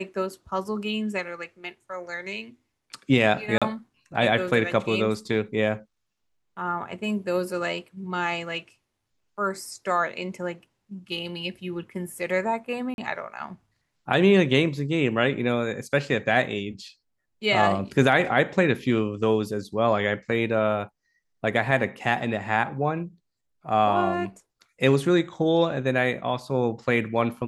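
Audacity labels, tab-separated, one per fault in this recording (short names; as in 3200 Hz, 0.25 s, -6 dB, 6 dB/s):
3.580000	3.620000	gap 36 ms
12.940000	12.980000	gap 41 ms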